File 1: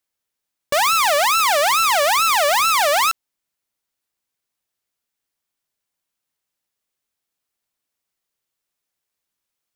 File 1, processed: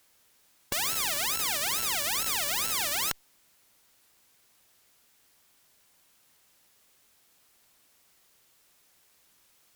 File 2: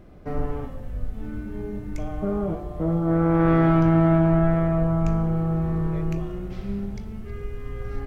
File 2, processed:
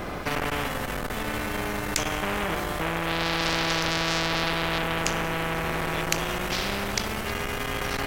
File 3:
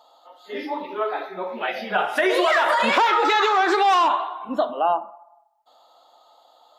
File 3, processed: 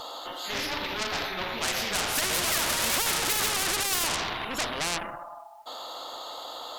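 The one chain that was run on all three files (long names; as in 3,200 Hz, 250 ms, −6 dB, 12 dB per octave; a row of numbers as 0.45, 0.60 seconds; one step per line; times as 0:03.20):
tube saturation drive 25 dB, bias 0.4
every bin compressed towards the loudest bin 4 to 1
loudness normalisation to −27 LKFS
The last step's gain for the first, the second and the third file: +12.5, +17.0, +11.5 decibels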